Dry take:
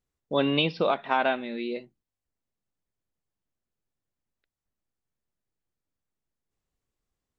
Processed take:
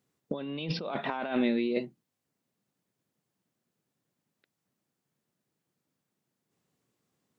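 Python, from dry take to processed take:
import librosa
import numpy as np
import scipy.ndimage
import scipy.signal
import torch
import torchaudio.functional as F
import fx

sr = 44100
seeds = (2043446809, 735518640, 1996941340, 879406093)

y = scipy.signal.sosfilt(scipy.signal.butter(4, 140.0, 'highpass', fs=sr, output='sos'), x)
y = fx.low_shelf(y, sr, hz=300.0, db=8.5)
y = fx.over_compress(y, sr, threshold_db=-32.0, ratio=-1.0)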